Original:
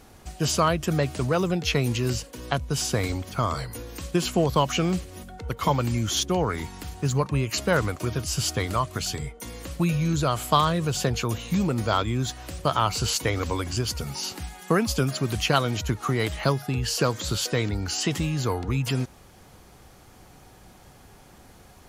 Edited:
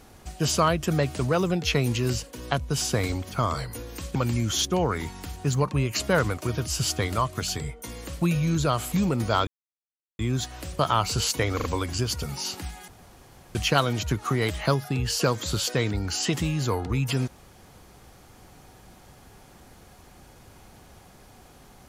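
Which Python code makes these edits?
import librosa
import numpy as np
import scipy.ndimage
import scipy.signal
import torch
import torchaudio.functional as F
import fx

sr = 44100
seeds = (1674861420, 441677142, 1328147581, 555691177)

y = fx.edit(x, sr, fx.cut(start_s=4.15, length_s=1.58),
    fx.cut(start_s=10.5, length_s=1.0),
    fx.insert_silence(at_s=12.05, length_s=0.72),
    fx.stutter(start_s=13.42, slice_s=0.04, count=3),
    fx.room_tone_fill(start_s=14.66, length_s=0.67), tone=tone)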